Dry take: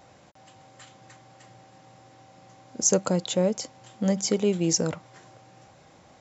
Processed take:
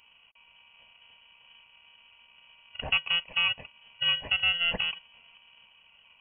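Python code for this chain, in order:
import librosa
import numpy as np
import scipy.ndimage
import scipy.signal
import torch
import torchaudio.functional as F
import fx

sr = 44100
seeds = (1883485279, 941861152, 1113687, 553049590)

y = fx.bit_reversed(x, sr, seeds[0], block=32)
y = fx.notch_comb(y, sr, f0_hz=920.0)
y = fx.freq_invert(y, sr, carrier_hz=3100)
y = y * 10.0 ** (-1.5 / 20.0)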